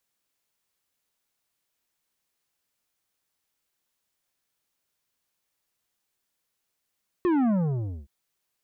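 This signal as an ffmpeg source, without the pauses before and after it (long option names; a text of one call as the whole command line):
ffmpeg -f lavfi -i "aevalsrc='0.0891*clip((0.82-t)/0.59,0,1)*tanh(3.16*sin(2*PI*370*0.82/log(65/370)*(exp(log(65/370)*t/0.82)-1)))/tanh(3.16)':duration=0.82:sample_rate=44100" out.wav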